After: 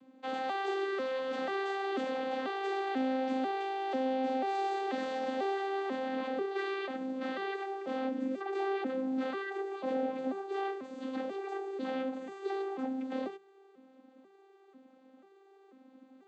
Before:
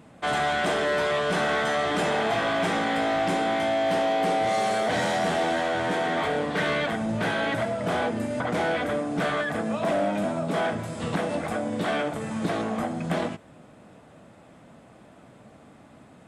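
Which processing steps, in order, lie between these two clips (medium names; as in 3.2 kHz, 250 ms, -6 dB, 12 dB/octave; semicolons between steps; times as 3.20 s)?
vocoder on a broken chord bare fifth, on C4, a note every 491 ms; peaking EQ 3.9 kHz +6 dB 0.73 oct; hum notches 50/100/150/200 Hz; trim -8 dB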